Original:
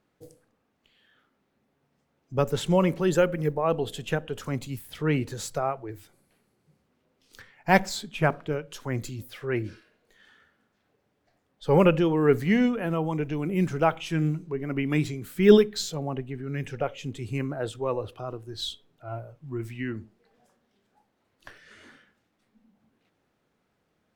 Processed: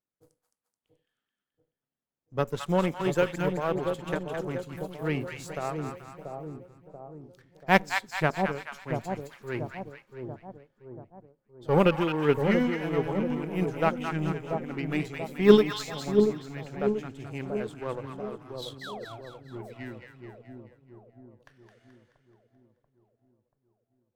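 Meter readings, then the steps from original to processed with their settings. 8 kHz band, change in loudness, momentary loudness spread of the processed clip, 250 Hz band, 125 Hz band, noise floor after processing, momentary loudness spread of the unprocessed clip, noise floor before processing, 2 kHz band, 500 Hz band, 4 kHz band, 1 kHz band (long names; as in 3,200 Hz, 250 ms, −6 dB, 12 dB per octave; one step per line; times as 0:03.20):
−7.0 dB, −2.0 dB, 19 LU, −2.5 dB, −4.0 dB, below −85 dBFS, 15 LU, −74 dBFS, 0.0 dB, −1.5 dB, −3.0 dB, −1.0 dB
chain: sound drawn into the spectrogram fall, 0:18.81–0:19.05, 420–2,100 Hz −32 dBFS
power curve on the samples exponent 1.4
echo with a time of its own for lows and highs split 870 Hz, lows 685 ms, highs 215 ms, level −5 dB
level +1.5 dB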